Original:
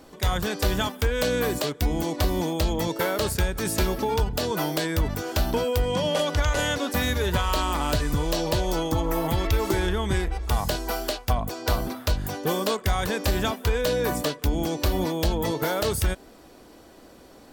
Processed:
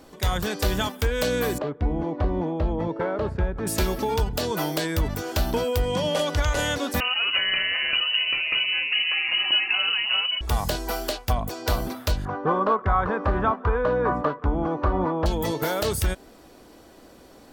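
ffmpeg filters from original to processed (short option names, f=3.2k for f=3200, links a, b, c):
-filter_complex "[0:a]asettb=1/sr,asplit=3[a][b][c];[a]atrim=end=1.584[d];[b]atrim=start=1.58:end=3.67,asetpts=PTS-STARTPTS,afade=t=in:d=0.004:c=qsin,afade=t=out:st=2.086:d=0.004:c=qsin,lowpass=1.3k[e];[c]atrim=start=3.666[f];[d][e]acrossfade=d=0.004:c1=hsin:c2=qsin[g];[g][f]acrossfade=d=0.004:c1=qsin:c2=hsin,asettb=1/sr,asplit=3[h][i][j];[h]atrim=end=7.004[k];[i]atrim=start=7:end=10.41,asetpts=PTS-STARTPTS,afade=t=in:d=0.004:c=qsin,afade=t=out:st=3.406:d=0.004:c=qsin,lowpass=f=2.6k:t=q:w=0.5098,lowpass=f=2.6k:t=q:w=0.6013,lowpass=f=2.6k:t=q:w=0.9,lowpass=f=2.6k:t=q:w=2.563,afreqshift=-3000[l];[j]atrim=start=10.406[m];[k][l]acrossfade=d=0.004:c1=hsin:c2=qsin[n];[n][m]acrossfade=d=0.004:c1=qsin:c2=hsin,asettb=1/sr,asplit=3[o][p][q];[o]atrim=end=12.254[r];[p]atrim=start=12.25:end=15.26,asetpts=PTS-STARTPTS,afade=t=in:d=0.004:c=qsin,afade=t=out:st=3.006:d=0.004:c=qsin,lowpass=f=1.2k:t=q:w=3.5[s];[q]atrim=start=15.256[t];[r][s]acrossfade=d=0.004:c1=hsin:c2=qsin[u];[u][t]acrossfade=d=0.004:c1=qsin:c2=hsin"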